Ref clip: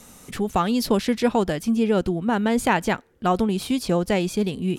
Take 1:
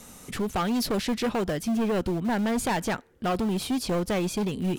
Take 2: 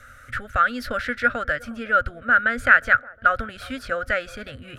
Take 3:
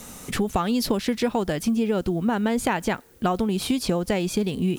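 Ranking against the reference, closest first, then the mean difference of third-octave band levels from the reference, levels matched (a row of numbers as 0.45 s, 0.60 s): 3, 1, 2; 3.0 dB, 4.5 dB, 9.0 dB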